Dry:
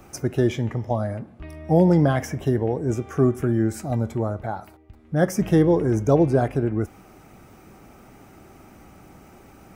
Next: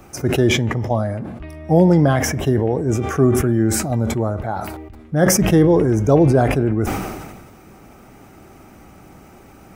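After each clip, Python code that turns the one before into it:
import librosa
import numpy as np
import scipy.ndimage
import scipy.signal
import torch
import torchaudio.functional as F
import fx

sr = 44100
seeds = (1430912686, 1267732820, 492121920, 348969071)

y = fx.sustainer(x, sr, db_per_s=38.0)
y = F.gain(torch.from_numpy(y), 3.5).numpy()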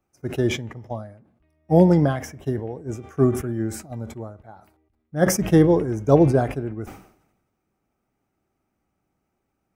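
y = fx.upward_expand(x, sr, threshold_db=-31.0, expansion=2.5)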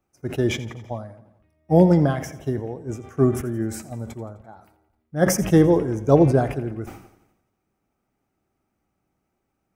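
y = fx.echo_feedback(x, sr, ms=85, feedback_pct=58, wet_db=-17.0)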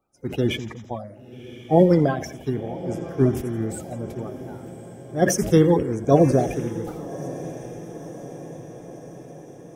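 y = fx.spec_quant(x, sr, step_db=30)
y = fx.echo_diffused(y, sr, ms=1106, feedback_pct=60, wet_db=-15.0)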